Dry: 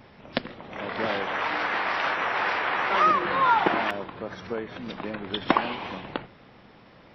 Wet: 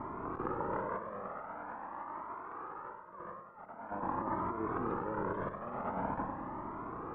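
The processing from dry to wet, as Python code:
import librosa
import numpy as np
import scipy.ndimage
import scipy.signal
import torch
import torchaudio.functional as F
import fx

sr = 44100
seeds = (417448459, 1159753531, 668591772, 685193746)

y = fx.bin_compress(x, sr, power=0.6)
y = scipy.signal.sosfilt(scipy.signal.butter(4, 1300.0, 'lowpass', fs=sr, output='sos'), y)
y = fx.notch(y, sr, hz=740.0, q=13.0)
y = fx.over_compress(y, sr, threshold_db=-29.0, ratio=-0.5)
y = fx.echo_feedback(y, sr, ms=97, feedback_pct=54, wet_db=-9.0)
y = fx.comb_cascade(y, sr, direction='rising', hz=0.45)
y = y * librosa.db_to_amplitude(-5.5)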